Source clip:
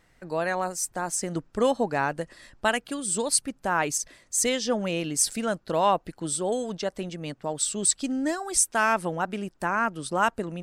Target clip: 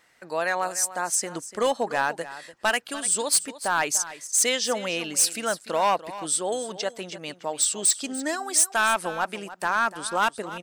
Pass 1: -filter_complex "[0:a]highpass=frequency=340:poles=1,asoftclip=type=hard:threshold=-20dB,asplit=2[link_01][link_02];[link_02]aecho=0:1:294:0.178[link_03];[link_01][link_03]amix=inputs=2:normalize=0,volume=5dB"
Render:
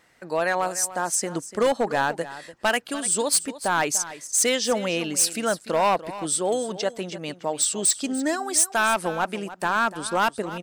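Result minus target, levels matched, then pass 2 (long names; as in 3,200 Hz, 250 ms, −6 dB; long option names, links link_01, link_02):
250 Hz band +5.0 dB
-filter_complex "[0:a]highpass=frequency=830:poles=1,asoftclip=type=hard:threshold=-20dB,asplit=2[link_01][link_02];[link_02]aecho=0:1:294:0.178[link_03];[link_01][link_03]amix=inputs=2:normalize=0,volume=5dB"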